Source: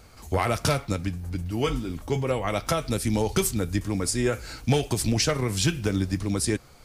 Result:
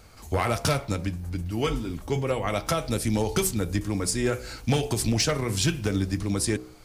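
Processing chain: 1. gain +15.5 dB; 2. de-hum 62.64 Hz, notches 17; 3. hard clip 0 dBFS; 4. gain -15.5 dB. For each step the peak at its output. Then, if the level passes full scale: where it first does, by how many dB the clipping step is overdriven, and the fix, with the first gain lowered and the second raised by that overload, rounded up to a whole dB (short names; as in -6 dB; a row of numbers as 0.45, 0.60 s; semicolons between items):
+3.0, +4.5, 0.0, -15.5 dBFS; step 1, 4.5 dB; step 1 +10.5 dB, step 4 -10.5 dB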